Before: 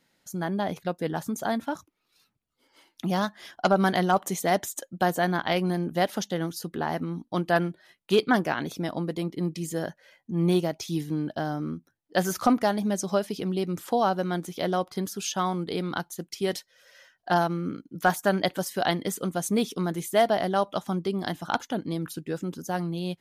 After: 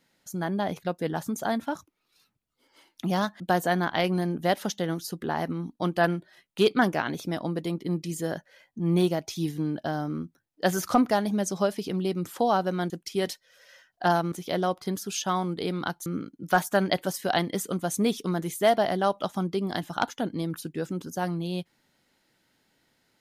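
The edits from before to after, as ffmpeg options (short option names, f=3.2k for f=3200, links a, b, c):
-filter_complex "[0:a]asplit=5[a][b][c][d][e];[a]atrim=end=3.402[f];[b]atrim=start=4.918:end=14.422[g];[c]atrim=start=16.158:end=17.582[h];[d]atrim=start=14.418:end=16.162[i];[e]atrim=start=17.578[j];[f][g]acrossfade=d=0.004:c1=hsin:c2=hsin[k];[k][h]acrossfade=d=0.004:c1=hsin:c2=hsin[l];[l][i]acrossfade=d=0.004:c1=hsin:c2=hsin[m];[m][j]acrossfade=d=0.004:c1=hsin:c2=hsin"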